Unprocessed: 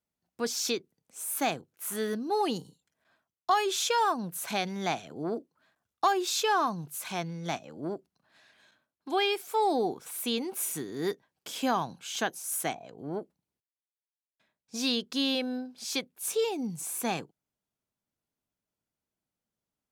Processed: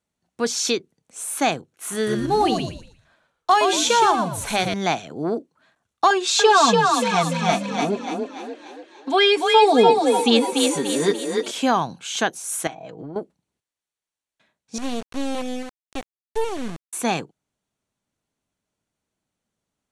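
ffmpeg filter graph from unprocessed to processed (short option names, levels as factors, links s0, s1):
-filter_complex "[0:a]asettb=1/sr,asplit=3[s0][s1][s2];[s0]atrim=end=1.954[s3];[s1]atrim=start=1.95:end=4.74,asetpts=PTS-STARTPTS,afade=t=in:d=0.004:c=qsin,afade=t=out:st=2.786:d=0.004:c=qsin,bandreject=f=50:t=h:w=6,bandreject=f=100:t=h:w=6,bandreject=f=150:t=h:w=6,bandreject=f=200:t=h:w=6,bandreject=f=250:t=h:w=6,bandreject=f=300:t=h:w=6,bandreject=f=350:t=h:w=6,bandreject=f=400:t=h:w=6,acrusher=bits=6:mode=log:mix=0:aa=0.000001,asplit=5[s4][s5][s6][s7][s8];[s5]adelay=117,afreqshift=-82,volume=0.531[s9];[s6]adelay=234,afreqshift=-164,volume=0.158[s10];[s7]adelay=351,afreqshift=-246,volume=0.0479[s11];[s8]adelay=468,afreqshift=-328,volume=0.0143[s12];[s4][s9][s10][s11][s12]amix=inputs=5:normalize=0,atrim=end_sample=123039[s13];[s2]atrim=start=4.736[s14];[s3][s13]acrossfade=d=0.004:c1=hsin:c2=qsin[s15];[s15][s14]acrossfade=d=0.004:c1=qsin:c2=hsin,asettb=1/sr,asplit=3[s16][s17][s18];[s16]atrim=end=6.104[s19];[s17]atrim=start=6.1:end=11.51,asetpts=PTS-STARTPTS,afade=t=in:d=0.004:c=qsin,afade=t=out:st=5.406:d=0.004:c=qsin,lowpass=8400,aecho=1:1:4.4:0.97,atrim=end_sample=238581,asplit=7[s20][s21][s22][s23][s24][s25][s26];[s21]adelay=291,afreqshift=32,volume=0.668[s27];[s22]adelay=582,afreqshift=64,volume=0.313[s28];[s23]adelay=873,afreqshift=96,volume=0.148[s29];[s24]adelay=1164,afreqshift=128,volume=0.0692[s30];[s25]adelay=1455,afreqshift=160,volume=0.0327[s31];[s26]adelay=1746,afreqshift=192,volume=0.0153[s32];[s20][s27][s28][s29][s30][s31][s32]amix=inputs=7:normalize=0,atrim=end_sample=238581[s33];[s18]atrim=start=11.506[s34];[s19][s33]acrossfade=d=0.004:c1=hsin:c2=qsin[s35];[s35][s34]acrossfade=d=0.004:c1=qsin:c2=hsin,asettb=1/sr,asplit=3[s36][s37][s38];[s36]atrim=end=12.674[s39];[s37]atrim=start=12.67:end=13.16,asetpts=PTS-STARTPTS,afade=t=in:d=0.004:c=qsin,afade=t=out:st=0.486:d=0.004:c=qsin,lowpass=f=3800:p=1,aecho=1:1:6.3:0.58,atrim=end_sample=21609,acompressor=threshold=0.0112:ratio=16:attack=3.2:release=140:knee=1:detection=peak[s40];[s38]atrim=start=13.156[s41];[s39][s40]acrossfade=d=0.004:c1=hsin:c2=qsin[s42];[s42][s41]acrossfade=d=0.004:c1=qsin:c2=hsin,asettb=1/sr,asplit=3[s43][s44][s45];[s43]atrim=end=14.784[s46];[s44]atrim=start=14.78:end=16.93,asetpts=PTS-STARTPTS,afade=t=in:d=0.004:c=qsin,afade=t=out:st=2.146:d=0.004:c=qsin,lowpass=1500,acrusher=bits=4:dc=4:mix=0:aa=0.000001[s47];[s45]atrim=start=16.926[s48];[s46][s47]acrossfade=d=0.004:c1=hsin:c2=qsin[s49];[s49][s48]acrossfade=d=0.004:c1=qsin:c2=hsin,lowpass=f=10000:w=0.5412,lowpass=f=10000:w=1.3066,bandreject=f=5000:w=11,volume=2.66"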